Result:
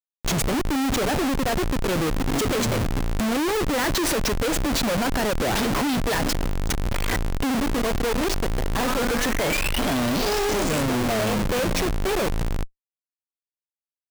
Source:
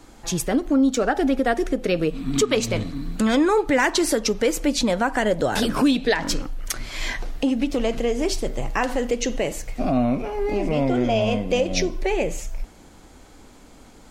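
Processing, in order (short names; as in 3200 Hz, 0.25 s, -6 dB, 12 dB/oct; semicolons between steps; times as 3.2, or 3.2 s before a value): painted sound rise, 8.85–10.83, 1200–8200 Hz -30 dBFS; Schmitt trigger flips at -29 dBFS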